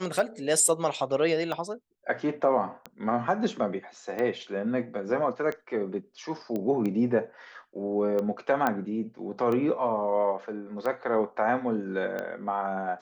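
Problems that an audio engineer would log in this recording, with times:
scratch tick 45 rpm
0:06.56: click −20 dBFS
0:08.67: click −13 dBFS

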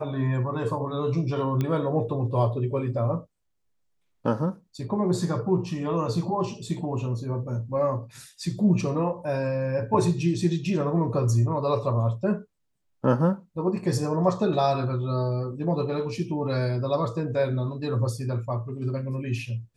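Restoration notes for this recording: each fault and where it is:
0:01.61: click −15 dBFS

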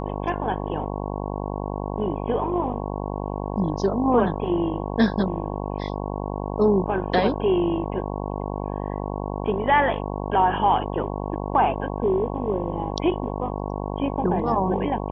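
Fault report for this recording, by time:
mains buzz 50 Hz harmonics 22 −29 dBFS

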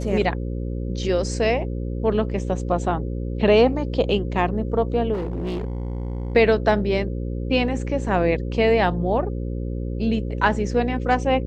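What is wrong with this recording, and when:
mains buzz 60 Hz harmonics 9 −27 dBFS
0:05.13–0:06.35: clipping −23 dBFS

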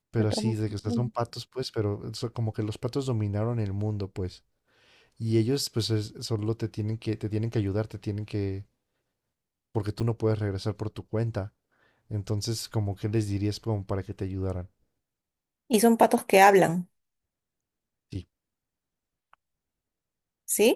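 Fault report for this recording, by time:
0:10.00–0:10.01: drop-out 6.2 ms

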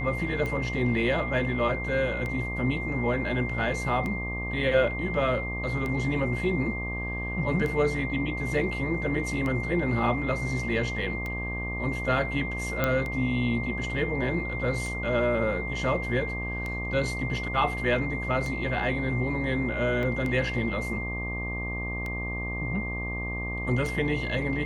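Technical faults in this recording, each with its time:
mains buzz 60 Hz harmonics 20 −34 dBFS
scratch tick 33 1/3 rpm −20 dBFS
whistle 2,100 Hz −33 dBFS
0:12.84: click −11 dBFS
0:20.03: drop-out 2.5 ms

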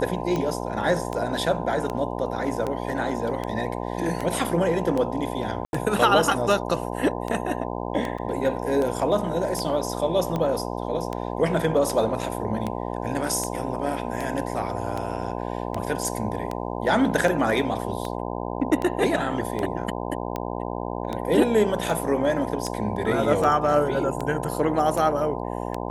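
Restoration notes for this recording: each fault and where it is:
mains buzz 60 Hz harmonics 17 −30 dBFS
scratch tick 78 rpm −15 dBFS
0:05.65–0:05.73: drop-out 81 ms
0:08.18: drop-out 4.8 ms

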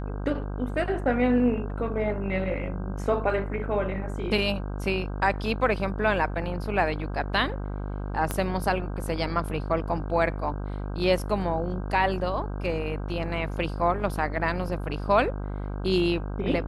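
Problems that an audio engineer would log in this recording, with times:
mains buzz 50 Hz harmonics 32 −32 dBFS
0:08.31: click −13 dBFS

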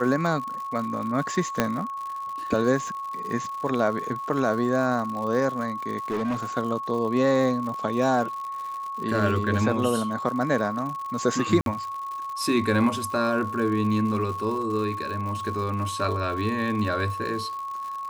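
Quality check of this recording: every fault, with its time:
surface crackle 130 per second −33 dBFS
whistle 1,100 Hz −30 dBFS
0:01.60: click −6 dBFS
0:06.10–0:06.45: clipping −23 dBFS
0:11.61–0:11.66: drop-out 52 ms

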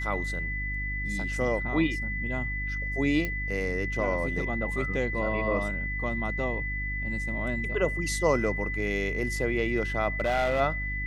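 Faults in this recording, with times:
mains hum 50 Hz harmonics 6 −34 dBFS
whistle 2,000 Hz −32 dBFS
0:03.25: click −17 dBFS
0:10.20–0:10.61: clipping −21.5 dBFS

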